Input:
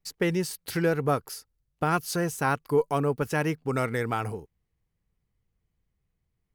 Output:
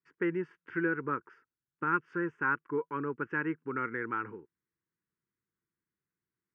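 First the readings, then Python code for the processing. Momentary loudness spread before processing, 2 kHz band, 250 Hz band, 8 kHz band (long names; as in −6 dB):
6 LU, −0.5 dB, −5.5 dB, below −40 dB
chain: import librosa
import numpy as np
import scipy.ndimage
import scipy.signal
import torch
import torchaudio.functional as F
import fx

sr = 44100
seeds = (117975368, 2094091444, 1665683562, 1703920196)

y = fx.cabinet(x, sr, low_hz=230.0, low_slope=12, high_hz=2600.0, hz=(340.0, 630.0, 950.0, 1500.0, 2300.0), db=(8, -4, 6, 8, -3))
y = fx.fixed_phaser(y, sr, hz=1700.0, stages=4)
y = F.gain(torch.from_numpy(y), -5.5).numpy()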